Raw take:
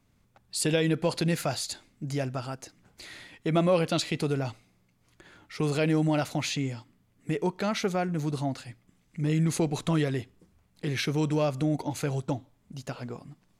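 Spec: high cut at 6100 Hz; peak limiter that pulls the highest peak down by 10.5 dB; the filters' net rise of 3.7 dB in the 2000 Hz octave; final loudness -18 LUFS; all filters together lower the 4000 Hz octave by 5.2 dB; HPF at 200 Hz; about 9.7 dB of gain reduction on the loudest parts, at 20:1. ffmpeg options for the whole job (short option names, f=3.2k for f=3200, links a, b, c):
-af "highpass=200,lowpass=6.1k,equalizer=f=2k:t=o:g=7,equalizer=f=4k:t=o:g=-8,acompressor=threshold=-28dB:ratio=20,volume=20.5dB,alimiter=limit=-6dB:level=0:latency=1"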